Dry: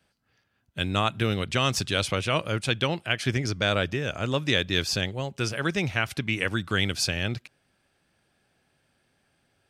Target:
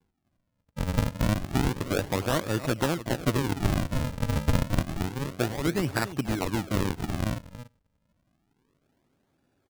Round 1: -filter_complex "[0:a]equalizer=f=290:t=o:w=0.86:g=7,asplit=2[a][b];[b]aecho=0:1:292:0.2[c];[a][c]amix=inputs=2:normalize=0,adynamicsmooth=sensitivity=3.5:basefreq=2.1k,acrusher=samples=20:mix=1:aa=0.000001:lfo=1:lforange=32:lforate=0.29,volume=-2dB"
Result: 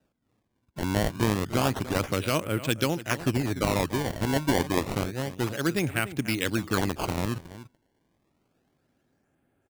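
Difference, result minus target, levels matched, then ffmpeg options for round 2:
decimation with a swept rate: distortion -9 dB
-filter_complex "[0:a]equalizer=f=290:t=o:w=0.86:g=7,asplit=2[a][b];[b]aecho=0:1:292:0.2[c];[a][c]amix=inputs=2:normalize=0,adynamicsmooth=sensitivity=3.5:basefreq=2.1k,acrusher=samples=68:mix=1:aa=0.000001:lfo=1:lforange=109:lforate=0.29,volume=-2dB"

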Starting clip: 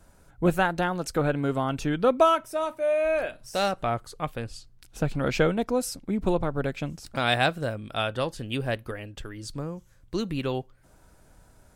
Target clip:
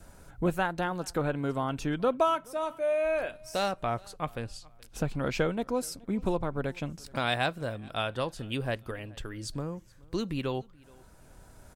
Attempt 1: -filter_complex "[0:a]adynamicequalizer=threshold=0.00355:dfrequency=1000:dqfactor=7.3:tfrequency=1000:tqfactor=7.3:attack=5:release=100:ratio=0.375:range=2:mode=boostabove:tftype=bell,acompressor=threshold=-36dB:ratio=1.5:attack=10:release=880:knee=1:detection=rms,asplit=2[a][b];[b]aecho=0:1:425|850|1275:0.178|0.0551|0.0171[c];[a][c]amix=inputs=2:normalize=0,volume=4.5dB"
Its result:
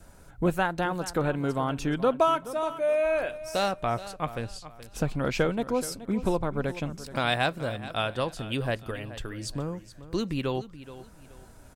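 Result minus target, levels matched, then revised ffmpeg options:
echo-to-direct +10.5 dB; compressor: peak gain reduction -2.5 dB
-filter_complex "[0:a]adynamicequalizer=threshold=0.00355:dfrequency=1000:dqfactor=7.3:tfrequency=1000:tqfactor=7.3:attack=5:release=100:ratio=0.375:range=2:mode=boostabove:tftype=bell,acompressor=threshold=-44dB:ratio=1.5:attack=10:release=880:knee=1:detection=rms,asplit=2[a][b];[b]aecho=0:1:425|850:0.0531|0.0165[c];[a][c]amix=inputs=2:normalize=0,volume=4.5dB"

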